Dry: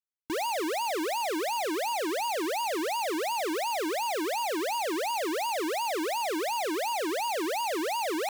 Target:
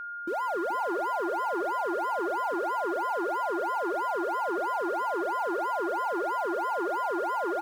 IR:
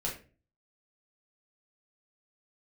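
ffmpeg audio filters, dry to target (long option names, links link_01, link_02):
-af "afwtdn=0.0251,aeval=exprs='val(0)+0.0178*sin(2*PI*1300*n/s)':channel_layout=same,aecho=1:1:466:0.376,asetrate=48000,aresample=44100"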